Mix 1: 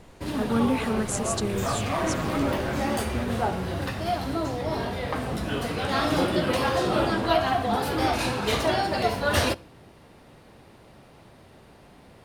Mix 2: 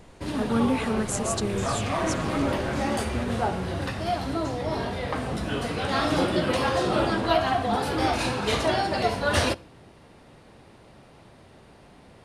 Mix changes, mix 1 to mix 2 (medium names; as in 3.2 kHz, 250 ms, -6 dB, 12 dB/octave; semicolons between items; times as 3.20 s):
first sound: add low-pass 11 kHz 24 dB/octave; second sound: add brick-wall FIR low-pass 12 kHz